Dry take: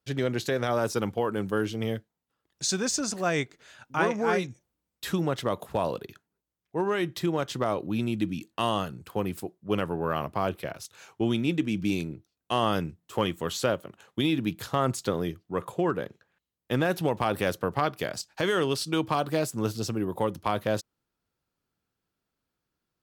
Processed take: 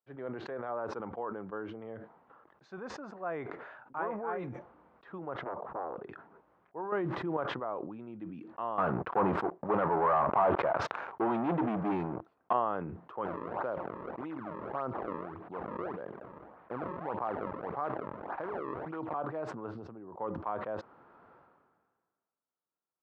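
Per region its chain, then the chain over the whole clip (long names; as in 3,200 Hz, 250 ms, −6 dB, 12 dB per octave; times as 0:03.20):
0:05.41–0:06.04: high-shelf EQ 2,300 Hz −10.5 dB + highs frequency-modulated by the lows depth 0.91 ms
0:06.92–0:07.37: spike at every zero crossing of −29.5 dBFS + low-shelf EQ 390 Hz +9.5 dB + envelope flattener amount 100%
0:08.78–0:12.53: dynamic equaliser 900 Hz, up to +5 dB, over −44 dBFS, Q 1.8 + leveller curve on the samples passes 5
0:13.25–0:19.14: sample-and-hold swept by an LFO 34×, swing 160% 1.7 Hz + background raised ahead of every attack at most 21 dB per second
0:19.75–0:20.15: low-shelf EQ 460 Hz +7 dB + downward compressor 5 to 1, threshold −28 dBFS
whole clip: low-pass filter 1,100 Hz 24 dB per octave; first difference; level that may fall only so fast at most 37 dB per second; level +11.5 dB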